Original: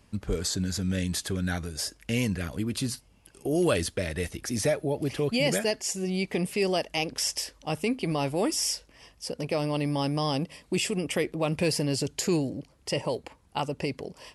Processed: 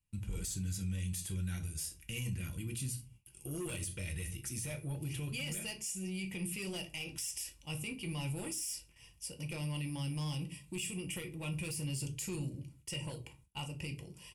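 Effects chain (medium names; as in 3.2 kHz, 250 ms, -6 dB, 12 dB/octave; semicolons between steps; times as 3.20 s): bass shelf 79 Hz -4.5 dB; comb 2.1 ms, depth 40%; simulated room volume 150 m³, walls furnished, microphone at 0.82 m; saturation -18.5 dBFS, distortion -15 dB; band-stop 420 Hz, Q 12; gate with hold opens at -43 dBFS; FFT filter 110 Hz 0 dB, 320 Hz -11 dB, 520 Hz -21 dB, 740 Hz -15 dB, 1.7 kHz -14 dB, 2.6 kHz -1 dB, 4.3 kHz -12 dB, 9 kHz +3 dB; peak limiter -27.5 dBFS, peak gain reduction 9 dB; trim -2.5 dB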